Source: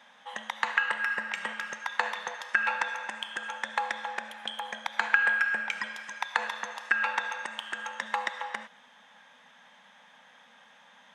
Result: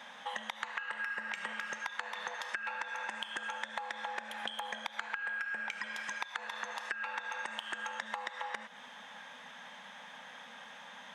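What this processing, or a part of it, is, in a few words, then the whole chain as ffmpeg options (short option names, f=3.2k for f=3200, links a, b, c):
serial compression, leveller first: -af "acompressor=threshold=-31dB:ratio=2,acompressor=threshold=-43dB:ratio=5,volume=6.5dB"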